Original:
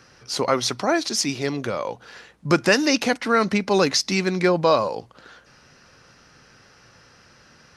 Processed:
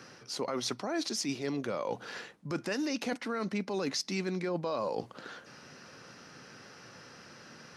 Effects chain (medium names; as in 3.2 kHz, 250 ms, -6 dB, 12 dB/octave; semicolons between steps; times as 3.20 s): high-pass 190 Hz 12 dB/octave; bass shelf 350 Hz +7 dB; peak limiter -11 dBFS, peak gain reduction 8 dB; reverse; compression 5:1, threshold -32 dBFS, peak gain reduction 14.5 dB; reverse